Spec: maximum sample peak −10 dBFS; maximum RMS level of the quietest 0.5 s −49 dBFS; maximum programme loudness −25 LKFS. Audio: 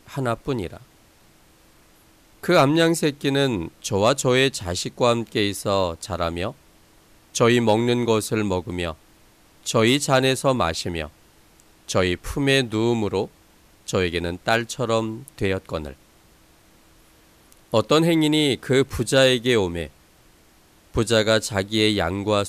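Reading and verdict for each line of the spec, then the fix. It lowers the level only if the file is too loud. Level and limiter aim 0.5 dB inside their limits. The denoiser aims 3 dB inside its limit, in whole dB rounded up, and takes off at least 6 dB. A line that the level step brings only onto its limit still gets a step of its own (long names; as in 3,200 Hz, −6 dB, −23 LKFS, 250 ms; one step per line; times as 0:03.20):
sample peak −6.0 dBFS: out of spec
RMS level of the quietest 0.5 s −55 dBFS: in spec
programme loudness −21.5 LKFS: out of spec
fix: level −4 dB
brickwall limiter −10.5 dBFS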